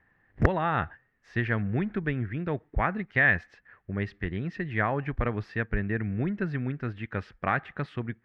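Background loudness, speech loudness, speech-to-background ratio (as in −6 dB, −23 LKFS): −29.5 LKFS, −30.0 LKFS, −0.5 dB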